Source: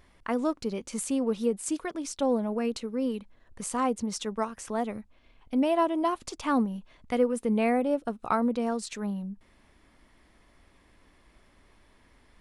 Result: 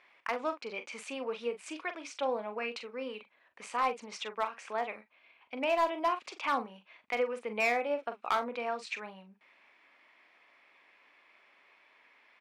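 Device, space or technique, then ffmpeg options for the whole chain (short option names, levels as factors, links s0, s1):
megaphone: -filter_complex "[0:a]highpass=670,lowpass=3500,equalizer=f=2400:t=o:w=0.41:g=10,asoftclip=type=hard:threshold=0.0794,asplit=2[s0][s1];[s1]adelay=42,volume=0.316[s2];[s0][s2]amix=inputs=2:normalize=0"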